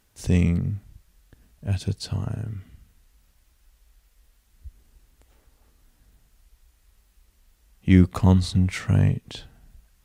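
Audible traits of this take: noise floor -64 dBFS; spectral tilt -8.5 dB/octave

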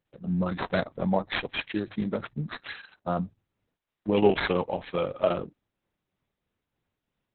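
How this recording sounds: tremolo triangle 3.1 Hz, depth 45%; aliases and images of a low sample rate 5.6 kHz, jitter 0%; Opus

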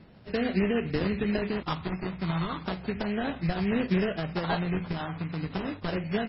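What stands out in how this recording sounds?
phasing stages 12, 0.34 Hz, lowest notch 510–1400 Hz; aliases and images of a low sample rate 2.3 kHz, jitter 20%; MP3

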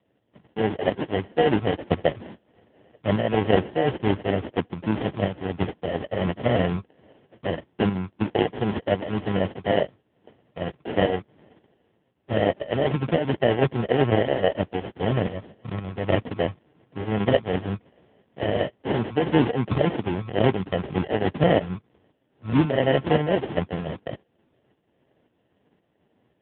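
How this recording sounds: aliases and images of a low sample rate 1.2 kHz, jitter 0%; tremolo saw up 1.9 Hz, depth 60%; AMR-NB

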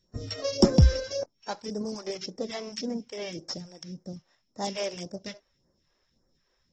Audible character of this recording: a buzz of ramps at a fixed pitch in blocks of 8 samples; phasing stages 2, 1.8 Hz, lowest notch 140–3000 Hz; AAC

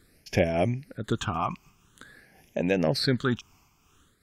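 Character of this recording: phasing stages 8, 0.48 Hz, lowest notch 510–1300 Hz; random flutter of the level

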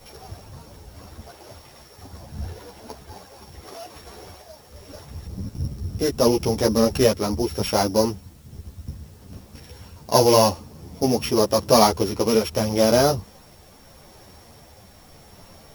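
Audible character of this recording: a buzz of ramps at a fixed pitch in blocks of 8 samples; tremolo triangle 0.79 Hz, depth 30%; a quantiser's noise floor 10-bit, dither triangular; a shimmering, thickened sound

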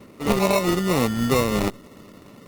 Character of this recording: aliases and images of a low sample rate 1.6 kHz, jitter 0%; Opus

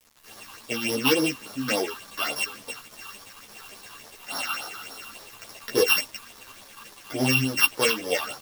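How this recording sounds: a buzz of ramps at a fixed pitch in blocks of 16 samples; phasing stages 6, 3.5 Hz, lowest notch 510–2600 Hz; a quantiser's noise floor 8-bit, dither none; a shimmering, thickened sound

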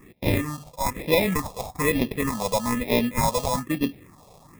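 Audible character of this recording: aliases and images of a low sample rate 1.5 kHz, jitter 0%; phasing stages 4, 1.1 Hz, lowest notch 290–1300 Hz

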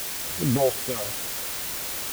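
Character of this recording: phasing stages 4, 2.6 Hz, lowest notch 220–1600 Hz; random-step tremolo 3.8 Hz, depth 70%; a quantiser's noise floor 6-bit, dither triangular

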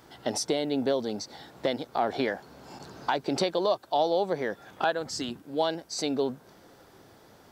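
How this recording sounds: noise floor -56 dBFS; spectral tilt -3.5 dB/octave

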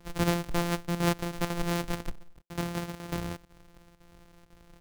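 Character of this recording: a buzz of ramps at a fixed pitch in blocks of 256 samples; chopped level 2 Hz, depth 65%, duty 90%

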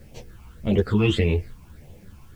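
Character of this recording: phasing stages 8, 1.7 Hz, lowest notch 520–1500 Hz; a quantiser's noise floor 12-bit, dither triangular; a shimmering, thickened sound

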